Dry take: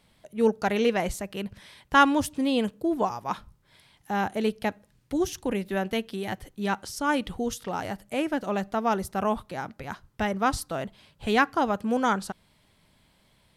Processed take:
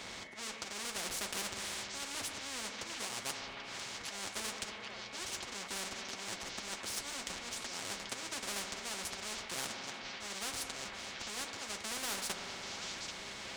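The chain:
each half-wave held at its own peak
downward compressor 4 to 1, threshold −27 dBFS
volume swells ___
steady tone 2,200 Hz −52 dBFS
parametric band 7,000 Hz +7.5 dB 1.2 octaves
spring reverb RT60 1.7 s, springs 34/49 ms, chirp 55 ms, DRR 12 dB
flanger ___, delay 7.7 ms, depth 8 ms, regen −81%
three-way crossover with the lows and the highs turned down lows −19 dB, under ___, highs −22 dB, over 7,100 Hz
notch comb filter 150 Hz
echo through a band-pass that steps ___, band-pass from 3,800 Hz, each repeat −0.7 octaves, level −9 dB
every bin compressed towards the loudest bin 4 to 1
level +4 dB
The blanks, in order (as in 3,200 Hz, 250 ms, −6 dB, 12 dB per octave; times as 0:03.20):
764 ms, 1.3 Hz, 180 Hz, 786 ms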